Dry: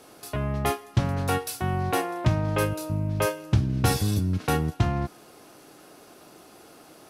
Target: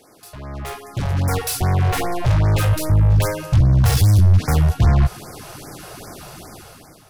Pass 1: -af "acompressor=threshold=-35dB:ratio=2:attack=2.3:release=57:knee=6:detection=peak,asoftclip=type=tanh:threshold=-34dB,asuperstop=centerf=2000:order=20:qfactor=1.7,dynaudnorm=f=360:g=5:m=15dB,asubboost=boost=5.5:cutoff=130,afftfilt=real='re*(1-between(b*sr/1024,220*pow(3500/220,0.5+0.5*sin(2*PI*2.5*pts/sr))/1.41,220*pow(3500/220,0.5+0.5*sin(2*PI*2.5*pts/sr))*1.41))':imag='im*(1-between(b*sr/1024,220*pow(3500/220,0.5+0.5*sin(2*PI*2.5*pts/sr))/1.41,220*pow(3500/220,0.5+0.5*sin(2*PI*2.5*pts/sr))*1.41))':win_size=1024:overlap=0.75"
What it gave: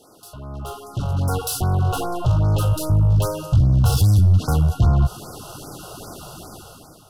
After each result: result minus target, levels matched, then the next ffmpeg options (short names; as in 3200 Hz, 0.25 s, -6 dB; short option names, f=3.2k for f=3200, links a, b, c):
compressor: peak gain reduction +11.5 dB; 2000 Hz band -9.0 dB
-af "asoftclip=type=tanh:threshold=-34dB,asuperstop=centerf=2000:order=20:qfactor=1.7,dynaudnorm=f=360:g=5:m=15dB,asubboost=boost=5.5:cutoff=130,afftfilt=real='re*(1-between(b*sr/1024,220*pow(3500/220,0.5+0.5*sin(2*PI*2.5*pts/sr))/1.41,220*pow(3500/220,0.5+0.5*sin(2*PI*2.5*pts/sr))*1.41))':imag='im*(1-between(b*sr/1024,220*pow(3500/220,0.5+0.5*sin(2*PI*2.5*pts/sr))/1.41,220*pow(3500/220,0.5+0.5*sin(2*PI*2.5*pts/sr))*1.41))':win_size=1024:overlap=0.75"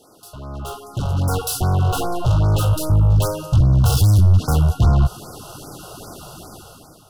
2000 Hz band -8.0 dB
-af "asoftclip=type=tanh:threshold=-34dB,dynaudnorm=f=360:g=5:m=15dB,asubboost=boost=5.5:cutoff=130,afftfilt=real='re*(1-between(b*sr/1024,220*pow(3500/220,0.5+0.5*sin(2*PI*2.5*pts/sr))/1.41,220*pow(3500/220,0.5+0.5*sin(2*PI*2.5*pts/sr))*1.41))':imag='im*(1-between(b*sr/1024,220*pow(3500/220,0.5+0.5*sin(2*PI*2.5*pts/sr))/1.41,220*pow(3500/220,0.5+0.5*sin(2*PI*2.5*pts/sr))*1.41))':win_size=1024:overlap=0.75"